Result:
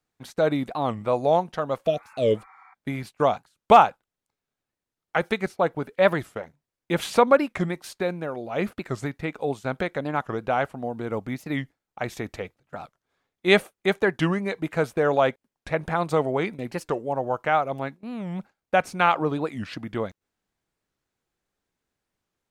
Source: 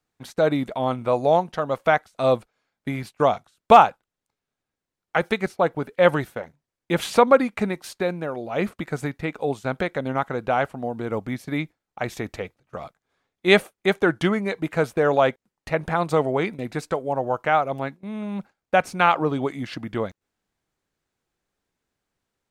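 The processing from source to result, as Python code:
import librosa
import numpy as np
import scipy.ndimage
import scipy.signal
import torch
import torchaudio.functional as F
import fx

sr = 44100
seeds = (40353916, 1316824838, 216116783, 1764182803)

y = fx.spec_repair(x, sr, seeds[0], start_s=1.89, length_s=0.82, low_hz=750.0, high_hz=2400.0, source='before')
y = fx.record_warp(y, sr, rpm=45.0, depth_cents=250.0)
y = y * librosa.db_to_amplitude(-2.0)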